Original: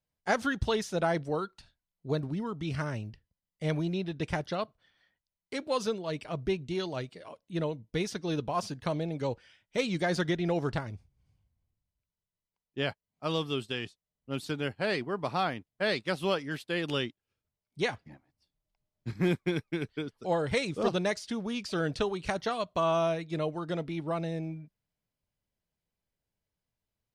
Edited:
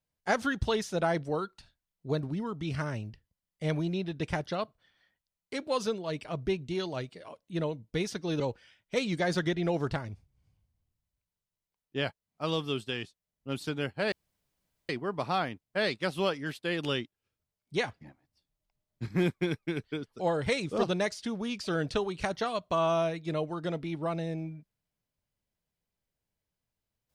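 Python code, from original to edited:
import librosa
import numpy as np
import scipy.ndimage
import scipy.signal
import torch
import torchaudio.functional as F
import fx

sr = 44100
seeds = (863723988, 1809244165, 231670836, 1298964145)

y = fx.edit(x, sr, fx.cut(start_s=8.4, length_s=0.82),
    fx.insert_room_tone(at_s=14.94, length_s=0.77), tone=tone)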